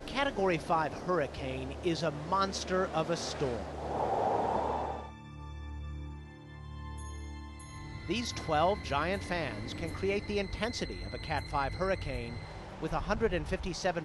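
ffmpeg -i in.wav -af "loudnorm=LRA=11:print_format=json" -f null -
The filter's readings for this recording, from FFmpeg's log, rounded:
"input_i" : "-34.0",
"input_tp" : "-16.3",
"input_lra" : "3.6",
"input_thresh" : "-44.4",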